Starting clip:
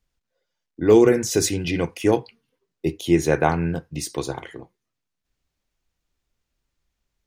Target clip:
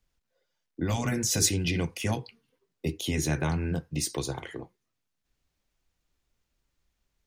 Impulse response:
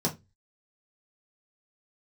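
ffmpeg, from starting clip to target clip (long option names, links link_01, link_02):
-filter_complex "[0:a]afftfilt=real='re*lt(hypot(re,im),0.708)':imag='im*lt(hypot(re,im),0.708)':win_size=1024:overlap=0.75,acrossover=split=200|3000[link_01][link_02][link_03];[link_02]acompressor=threshold=-32dB:ratio=4[link_04];[link_01][link_04][link_03]amix=inputs=3:normalize=0"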